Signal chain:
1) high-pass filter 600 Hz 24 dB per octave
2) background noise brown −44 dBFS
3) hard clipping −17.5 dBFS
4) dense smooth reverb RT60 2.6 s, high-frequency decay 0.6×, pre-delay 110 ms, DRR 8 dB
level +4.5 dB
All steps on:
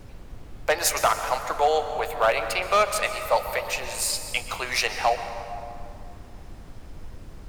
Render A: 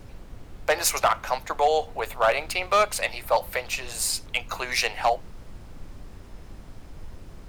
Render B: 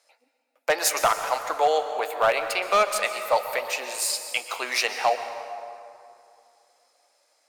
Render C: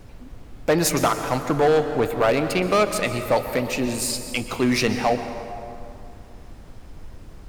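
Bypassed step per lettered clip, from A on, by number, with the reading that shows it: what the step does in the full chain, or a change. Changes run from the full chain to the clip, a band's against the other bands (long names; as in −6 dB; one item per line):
4, change in momentary loudness spread −6 LU
2, 250 Hz band −2.5 dB
1, 250 Hz band +20.0 dB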